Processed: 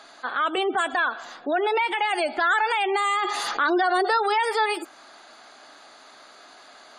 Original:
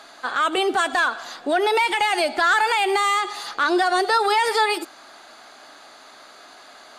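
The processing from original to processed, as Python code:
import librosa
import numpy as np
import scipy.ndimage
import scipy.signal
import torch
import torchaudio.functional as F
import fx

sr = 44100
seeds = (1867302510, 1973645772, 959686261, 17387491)

y = fx.dynamic_eq(x, sr, hz=4300.0, q=2.7, threshold_db=-45.0, ratio=4.0, max_db=-5)
y = fx.spec_gate(y, sr, threshold_db=-30, keep='strong')
y = fx.air_absorb(y, sr, metres=60.0, at=(1.25, 2.08), fade=0.02)
y = fx.env_flatten(y, sr, amount_pct=50, at=(3.21, 4.15), fade=0.02)
y = F.gain(torch.from_numpy(y), -3.0).numpy()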